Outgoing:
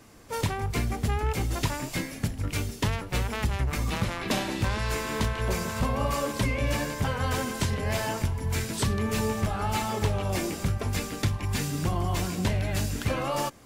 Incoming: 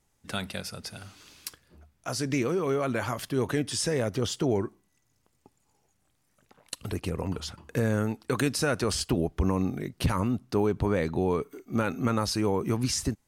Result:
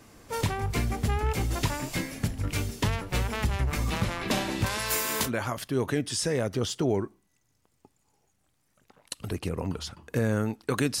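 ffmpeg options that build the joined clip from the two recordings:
ffmpeg -i cue0.wav -i cue1.wav -filter_complex "[0:a]asettb=1/sr,asplit=3[link_01][link_02][link_03];[link_01]atrim=end=4.664[link_04];[link_02]atrim=start=4.66:end=5.31,asetpts=PTS-STARTPTS,afade=type=in:duration=0.004:curve=qsin,afade=type=out:start_time=0.646:duration=0.004:curve=qsin,aemphasis=mode=production:type=bsi[link_05];[link_03]atrim=start=5.306[link_06];[link_04][link_05]acrossfade=duration=0.004:curve1=hsin:curve2=qsin[link_07];[link_07][link_06]acrossfade=duration=0.004:curve1=qsin:curve2=hsin,apad=whole_dur=11,atrim=end=11,atrim=end=5.31,asetpts=PTS-STARTPTS[link_08];[1:a]atrim=start=2.84:end=8.61,asetpts=PTS-STARTPTS[link_09];[link_08][link_09]acrossfade=duration=0.08:curve1=tri:curve2=tri" out.wav

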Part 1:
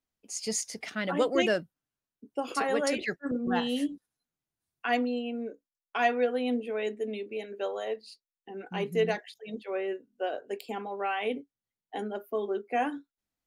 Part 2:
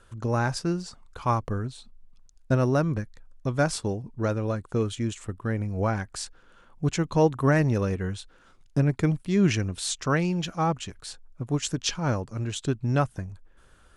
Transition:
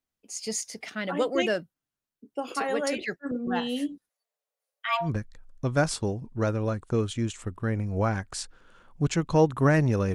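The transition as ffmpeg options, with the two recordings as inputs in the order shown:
ffmpeg -i cue0.wav -i cue1.wav -filter_complex "[0:a]asettb=1/sr,asplit=3[link_01][link_02][link_03];[link_01]atrim=end=4.094[link_04];[link_02]atrim=start=4.09:end=5.1,asetpts=PTS-STARTPTS,afade=type=in:duration=0.004:curve=qsin,afade=type=out:start_time=1.006:duration=0.004:curve=qsin,afreqshift=440[link_05];[link_03]atrim=start=5.096[link_06];[link_04][link_05]acrossfade=duration=0.004:curve1=hsin:curve2=qsin[link_07];[link_07][link_06]acrossfade=duration=0.004:curve1=qsin:curve2=hsin,apad=whole_dur=10.14,atrim=end=10.14,atrim=end=5.1,asetpts=PTS-STARTPTS[link_08];[1:a]atrim=start=2.82:end=7.96,asetpts=PTS-STARTPTS[link_09];[link_08][link_09]acrossfade=duration=0.1:curve1=tri:curve2=tri" out.wav

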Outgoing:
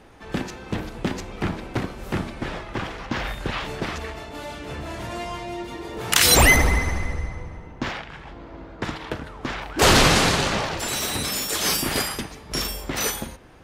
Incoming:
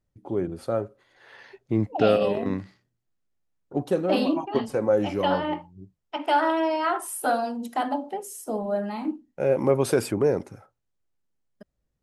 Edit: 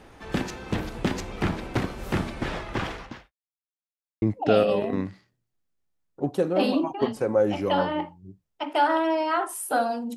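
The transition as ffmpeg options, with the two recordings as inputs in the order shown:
ffmpeg -i cue0.wav -i cue1.wav -filter_complex "[0:a]apad=whole_dur=10.16,atrim=end=10.16,asplit=2[link_01][link_02];[link_01]atrim=end=3.32,asetpts=PTS-STARTPTS,afade=type=out:start_time=2.91:duration=0.41:curve=qua[link_03];[link_02]atrim=start=3.32:end=4.22,asetpts=PTS-STARTPTS,volume=0[link_04];[1:a]atrim=start=1.75:end=7.69,asetpts=PTS-STARTPTS,afade=type=in:duration=0.004:curve=hsin[link_05];[link_03][link_04][link_05]concat=n=3:v=0:a=1" out.wav

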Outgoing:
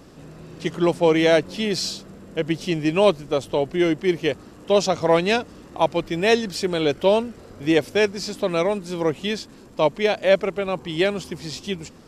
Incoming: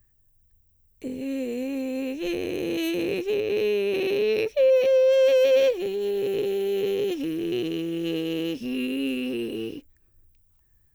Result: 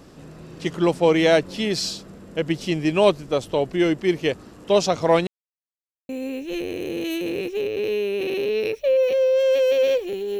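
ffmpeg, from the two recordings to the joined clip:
ffmpeg -i cue0.wav -i cue1.wav -filter_complex "[0:a]apad=whole_dur=10.39,atrim=end=10.39,asplit=2[link_01][link_02];[link_01]atrim=end=5.27,asetpts=PTS-STARTPTS,afade=type=out:start_time=5.266:duration=0.004:curve=hsin[link_03];[link_02]atrim=start=5.27:end=6.09,asetpts=PTS-STARTPTS,volume=0[link_04];[1:a]atrim=start=1.82:end=6.12,asetpts=PTS-STARTPTS,afade=type=in:duration=0.004:curve=hsin[link_05];[link_03][link_04][link_05]concat=n=3:v=0:a=1" out.wav

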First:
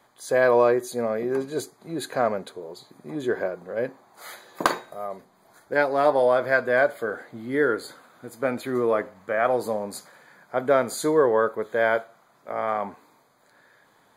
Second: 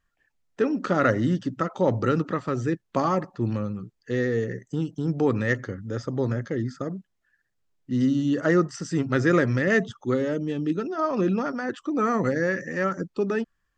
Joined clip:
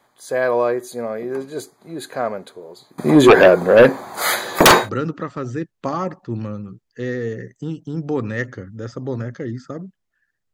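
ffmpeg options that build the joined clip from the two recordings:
ffmpeg -i cue0.wav -i cue1.wav -filter_complex "[0:a]asettb=1/sr,asplit=3[link_01][link_02][link_03];[link_01]atrim=end=2.984[link_04];[link_02]atrim=start=2.98:end=4.9,asetpts=PTS-STARTPTS,afade=type=in:duration=0.004:curve=qsin,afade=type=out:start_time=1.916:duration=0.004:curve=qsin,aeval=exprs='0.668*sin(PI/2*7.94*val(0)/0.668)':channel_layout=same[link_05];[link_03]atrim=start=4.896[link_06];[link_04][link_05]acrossfade=duration=0.004:curve1=hsin:curve2=qsin[link_07];[link_07][link_06]acrossfade=duration=0.004:curve1=qsin:curve2=hsin,apad=whole_dur=10.53,atrim=end=10.53,atrim=end=4.9,asetpts=PTS-STARTPTS[link_08];[1:a]atrim=start=1.93:end=7.64,asetpts=PTS-STARTPTS[link_09];[link_08][link_09]acrossfade=duration=0.08:curve1=tri:curve2=tri" out.wav

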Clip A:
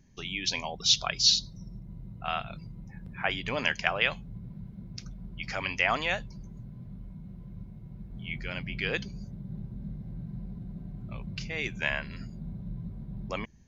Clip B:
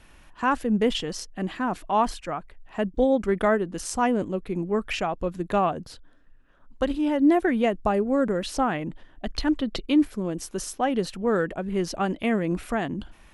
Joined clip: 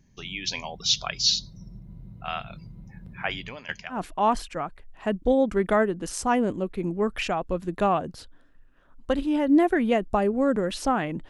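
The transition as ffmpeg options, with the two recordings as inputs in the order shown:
ffmpeg -i cue0.wav -i cue1.wav -filter_complex "[0:a]asettb=1/sr,asplit=3[link_01][link_02][link_03];[link_01]atrim=end=3.414[link_04];[link_02]atrim=start=3.41:end=4.01,asetpts=PTS-STARTPTS,afade=type=in:duration=0.004:curve=qsin,afade=type=out:start_time=0.596:duration=0.004:curve=qsin,aeval=exprs='val(0)*pow(10,-18*if(lt(mod(3.6*n/s,1),2*abs(3.6)/1000),1-mod(3.6*n/s,1)/(2*abs(3.6)/1000),(mod(3.6*n/s,1)-2*abs(3.6)/1000)/(1-2*abs(3.6)/1000))/20)':channel_layout=same[link_05];[link_03]atrim=start=4.006[link_06];[link_04][link_05]acrossfade=duration=0.004:curve1=hsin:curve2=qsin[link_07];[link_07][link_06]acrossfade=duration=0.004:curve1=qsin:curve2=hsin,apad=whole_dur=11.29,atrim=end=11.29,atrim=end=4.01,asetpts=PTS-STARTPTS[link_08];[1:a]atrim=start=1.61:end=9.01,asetpts=PTS-STARTPTS[link_09];[link_08][link_09]acrossfade=duration=0.12:curve1=tri:curve2=tri" out.wav

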